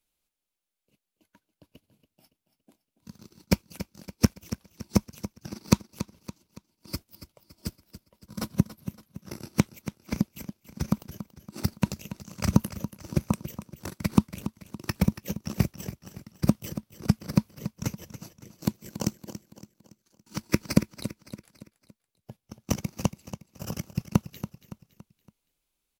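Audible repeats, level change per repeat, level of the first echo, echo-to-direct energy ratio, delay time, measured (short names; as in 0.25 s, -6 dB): 4, -7.0 dB, -13.0 dB, -12.0 dB, 0.282 s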